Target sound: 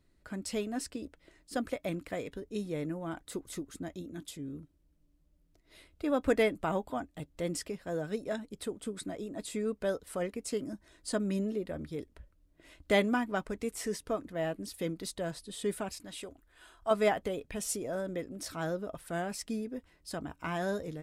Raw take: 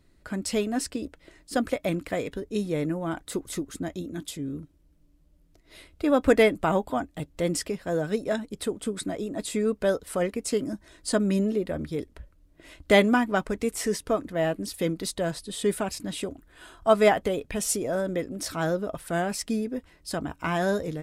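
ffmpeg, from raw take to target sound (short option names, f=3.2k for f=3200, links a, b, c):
-filter_complex "[0:a]asettb=1/sr,asplit=3[a][b][c];[a]atrim=end=15.944[d];[b]atrim=start=15.94:end=16.91,asetpts=PTS-STARTPTS,afade=t=in:d=0.004:c=qsin,afade=t=out:st=0.966:d=0.004:c=qsin,equalizer=f=180:w=0.58:g=-8.5[e];[c]atrim=start=16.906[f];[d][e]acrossfade=d=0.004:c1=hsin:c2=qsin[g];[g][f]acrossfade=d=0.004:c1=qsin:c2=hsin,volume=-8dB"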